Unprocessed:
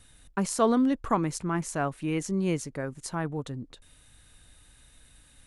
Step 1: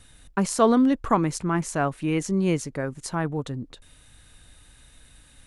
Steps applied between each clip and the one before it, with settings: treble shelf 10 kHz -4.5 dB; trim +4.5 dB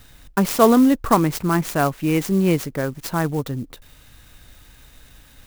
sampling jitter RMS 0.033 ms; trim +5 dB

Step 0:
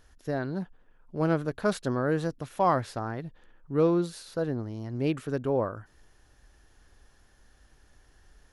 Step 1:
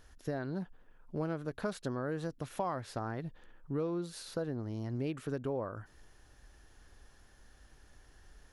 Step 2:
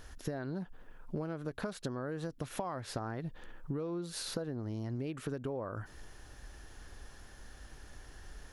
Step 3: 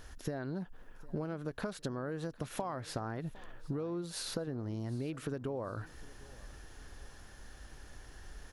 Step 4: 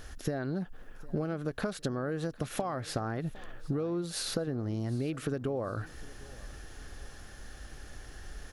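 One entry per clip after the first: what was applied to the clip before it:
compression 5:1, threshold -33 dBFS, peak gain reduction 13 dB
compression 10:1, threshold -42 dBFS, peak gain reduction 13 dB; trim +8 dB
feedback delay 757 ms, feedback 35%, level -21 dB
band-stop 960 Hz, Q 7.4; trim +5 dB

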